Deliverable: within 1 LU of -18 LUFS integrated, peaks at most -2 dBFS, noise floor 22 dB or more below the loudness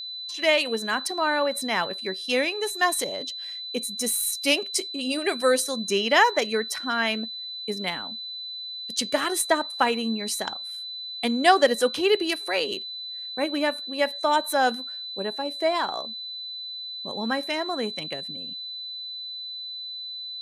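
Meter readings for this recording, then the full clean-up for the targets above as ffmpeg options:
steady tone 4 kHz; tone level -33 dBFS; loudness -25.5 LUFS; peak level -4.5 dBFS; loudness target -18.0 LUFS
-> -af "bandreject=f=4000:w=30"
-af "volume=2.37,alimiter=limit=0.794:level=0:latency=1"

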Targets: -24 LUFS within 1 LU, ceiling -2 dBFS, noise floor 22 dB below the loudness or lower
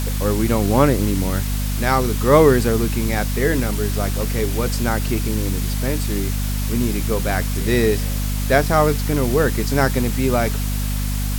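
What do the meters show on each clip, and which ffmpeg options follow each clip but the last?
hum 50 Hz; highest harmonic 250 Hz; hum level -19 dBFS; noise floor -22 dBFS; noise floor target -42 dBFS; loudness -19.5 LUFS; peak level -1.0 dBFS; loudness target -24.0 LUFS
-> -af "bandreject=f=50:t=h:w=6,bandreject=f=100:t=h:w=6,bandreject=f=150:t=h:w=6,bandreject=f=200:t=h:w=6,bandreject=f=250:t=h:w=6"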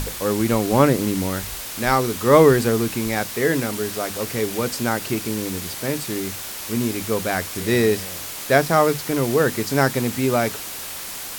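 hum not found; noise floor -32 dBFS; noise floor target -43 dBFS
-> -af "afftdn=nr=11:nf=-32"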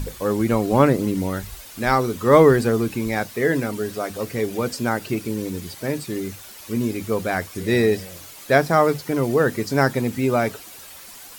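noise floor -41 dBFS; noise floor target -44 dBFS
-> -af "afftdn=nr=6:nf=-41"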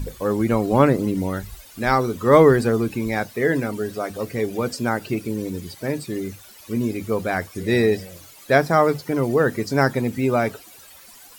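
noise floor -46 dBFS; loudness -21.5 LUFS; peak level -2.0 dBFS; loudness target -24.0 LUFS
-> -af "volume=0.75"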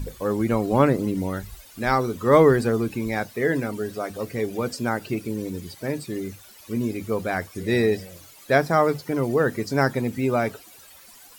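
loudness -24.0 LUFS; peak level -4.5 dBFS; noise floor -48 dBFS

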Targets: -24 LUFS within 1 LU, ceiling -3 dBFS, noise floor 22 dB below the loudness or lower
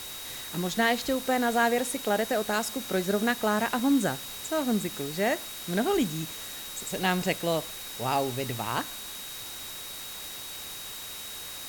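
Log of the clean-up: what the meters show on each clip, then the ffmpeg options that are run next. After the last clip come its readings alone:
steady tone 3.8 kHz; tone level -43 dBFS; noise floor -40 dBFS; noise floor target -51 dBFS; loudness -29.0 LUFS; peak level -10.0 dBFS; loudness target -24.0 LUFS
-> -af "bandreject=f=3800:w=30"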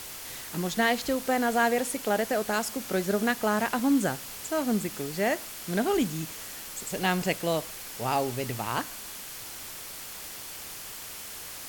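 steady tone not found; noise floor -41 dBFS; noise floor target -52 dBFS
-> -af "afftdn=nr=11:nf=-41"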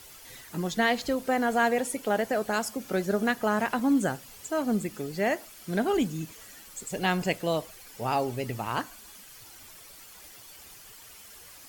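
noise floor -49 dBFS; noise floor target -51 dBFS
-> -af "afftdn=nr=6:nf=-49"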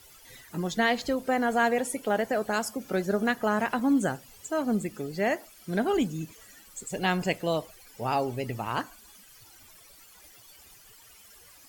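noise floor -54 dBFS; loudness -28.5 LUFS; peak level -10.5 dBFS; loudness target -24.0 LUFS
-> -af "volume=1.68"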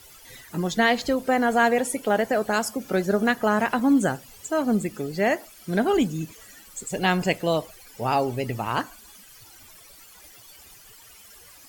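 loudness -24.0 LUFS; peak level -6.0 dBFS; noise floor -49 dBFS

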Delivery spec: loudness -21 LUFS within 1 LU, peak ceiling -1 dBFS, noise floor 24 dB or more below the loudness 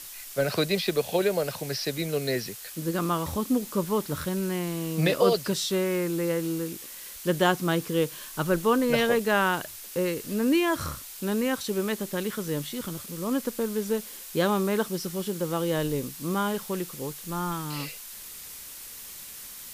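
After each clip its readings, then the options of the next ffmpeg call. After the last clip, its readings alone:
noise floor -42 dBFS; noise floor target -52 dBFS; loudness -27.5 LUFS; peak level -9.0 dBFS; loudness target -21.0 LUFS
-> -af "afftdn=nr=10:nf=-42"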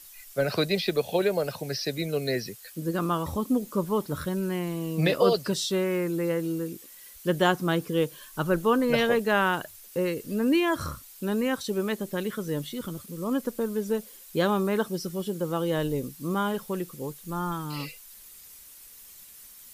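noise floor -49 dBFS; noise floor target -52 dBFS
-> -af "afftdn=nr=6:nf=-49"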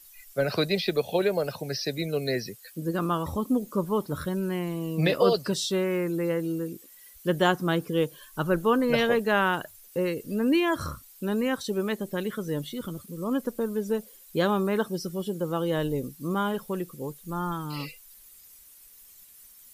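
noise floor -52 dBFS; loudness -28.0 LUFS; peak level -9.5 dBFS; loudness target -21.0 LUFS
-> -af "volume=2.24"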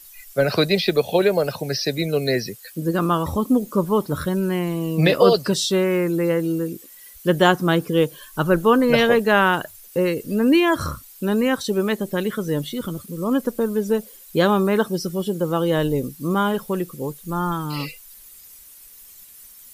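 loudness -21.0 LUFS; peak level -2.5 dBFS; noise floor -45 dBFS

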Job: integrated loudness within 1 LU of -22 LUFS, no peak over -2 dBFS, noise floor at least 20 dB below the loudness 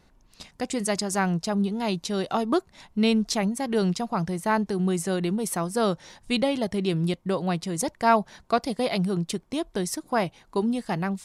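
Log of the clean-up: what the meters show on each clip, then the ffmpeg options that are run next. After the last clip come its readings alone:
loudness -26.5 LUFS; peak level -7.5 dBFS; loudness target -22.0 LUFS
-> -af "volume=1.68"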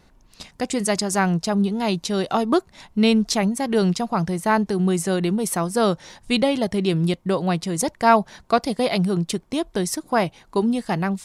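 loudness -22.0 LUFS; peak level -3.0 dBFS; noise floor -55 dBFS

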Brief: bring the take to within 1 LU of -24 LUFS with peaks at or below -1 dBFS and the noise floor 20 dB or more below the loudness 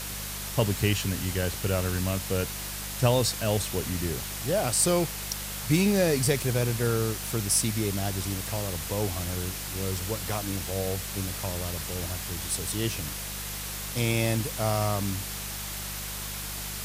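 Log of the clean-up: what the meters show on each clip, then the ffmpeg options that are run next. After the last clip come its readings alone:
hum 50 Hz; highest harmonic 200 Hz; hum level -39 dBFS; noise floor -36 dBFS; noise floor target -48 dBFS; loudness -28.0 LUFS; peak level -9.5 dBFS; loudness target -24.0 LUFS
-> -af "bandreject=f=50:t=h:w=4,bandreject=f=100:t=h:w=4,bandreject=f=150:t=h:w=4,bandreject=f=200:t=h:w=4"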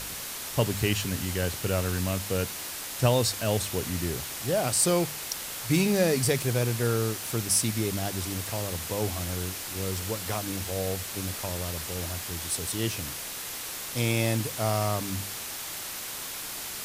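hum not found; noise floor -37 dBFS; noise floor target -49 dBFS
-> -af "afftdn=nr=12:nf=-37"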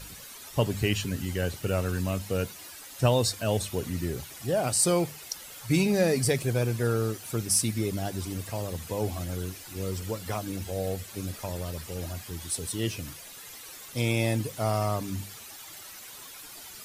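noise floor -45 dBFS; noise floor target -49 dBFS
-> -af "afftdn=nr=6:nf=-45"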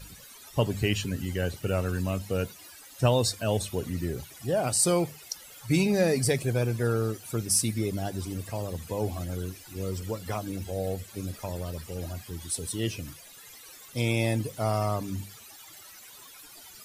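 noise floor -49 dBFS; noise floor target -50 dBFS
-> -af "afftdn=nr=6:nf=-49"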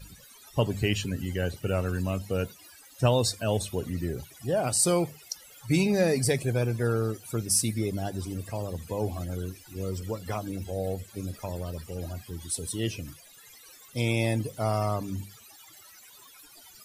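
noise floor -53 dBFS; loudness -29.5 LUFS; peak level -10.0 dBFS; loudness target -24.0 LUFS
-> -af "volume=1.88"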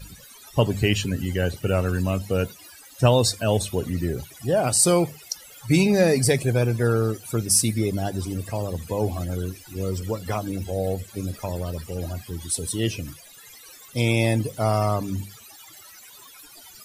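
loudness -24.0 LUFS; peak level -4.5 dBFS; noise floor -47 dBFS

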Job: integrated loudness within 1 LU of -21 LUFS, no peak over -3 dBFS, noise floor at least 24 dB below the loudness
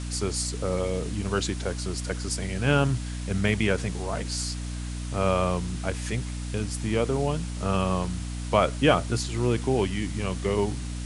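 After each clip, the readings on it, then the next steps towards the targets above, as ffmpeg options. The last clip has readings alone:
hum 60 Hz; highest harmonic 300 Hz; hum level -30 dBFS; noise floor -33 dBFS; noise floor target -52 dBFS; loudness -27.5 LUFS; peak level -5.5 dBFS; loudness target -21.0 LUFS
-> -af "bandreject=f=60:t=h:w=4,bandreject=f=120:t=h:w=4,bandreject=f=180:t=h:w=4,bandreject=f=240:t=h:w=4,bandreject=f=300:t=h:w=4"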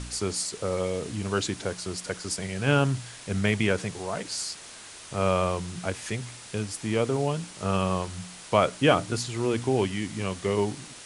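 hum not found; noise floor -45 dBFS; noise floor target -52 dBFS
-> -af "afftdn=nr=7:nf=-45"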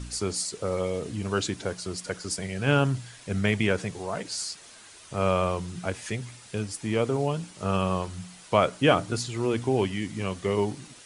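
noise floor -49 dBFS; noise floor target -52 dBFS
-> -af "afftdn=nr=6:nf=-49"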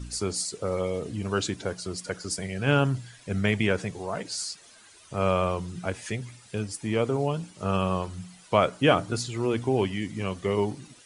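noise floor -53 dBFS; loudness -28.0 LUFS; peak level -6.0 dBFS; loudness target -21.0 LUFS
-> -af "volume=2.24,alimiter=limit=0.708:level=0:latency=1"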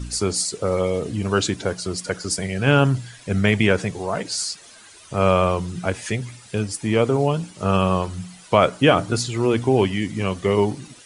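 loudness -21.5 LUFS; peak level -3.0 dBFS; noise floor -46 dBFS

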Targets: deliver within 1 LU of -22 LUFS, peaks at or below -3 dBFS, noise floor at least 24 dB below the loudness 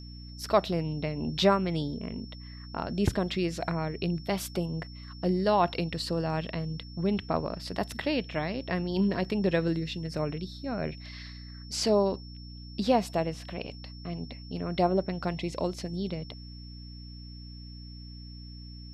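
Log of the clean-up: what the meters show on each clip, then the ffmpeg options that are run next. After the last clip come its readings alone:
hum 60 Hz; highest harmonic 300 Hz; hum level -42 dBFS; steady tone 5.4 kHz; tone level -50 dBFS; loudness -30.5 LUFS; peak level -9.5 dBFS; loudness target -22.0 LUFS
-> -af "bandreject=f=60:t=h:w=6,bandreject=f=120:t=h:w=6,bandreject=f=180:t=h:w=6,bandreject=f=240:t=h:w=6,bandreject=f=300:t=h:w=6"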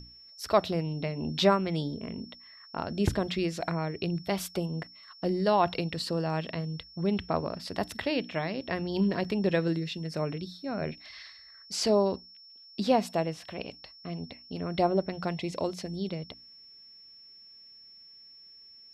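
hum not found; steady tone 5.4 kHz; tone level -50 dBFS
-> -af "bandreject=f=5400:w=30"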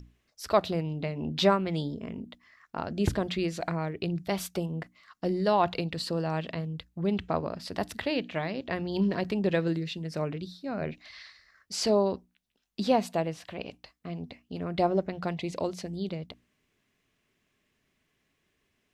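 steady tone not found; loudness -30.5 LUFS; peak level -9.5 dBFS; loudness target -22.0 LUFS
-> -af "volume=2.66,alimiter=limit=0.708:level=0:latency=1"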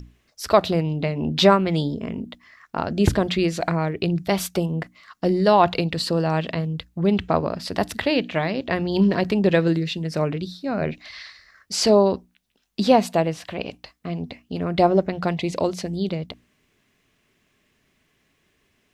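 loudness -22.5 LUFS; peak level -3.0 dBFS; noise floor -67 dBFS

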